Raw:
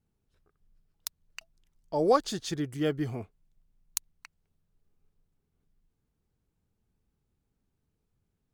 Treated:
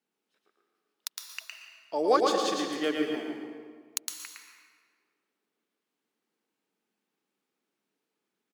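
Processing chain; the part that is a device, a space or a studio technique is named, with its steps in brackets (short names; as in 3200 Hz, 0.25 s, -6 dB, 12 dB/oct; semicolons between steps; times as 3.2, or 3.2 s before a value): PA in a hall (HPF 150 Hz; bell 2500 Hz +7 dB 2.3 oct; echo 0.111 s -4 dB; reverb RT60 1.7 s, pre-delay 0.114 s, DRR 4 dB); HPF 240 Hz 24 dB/oct; gain -2.5 dB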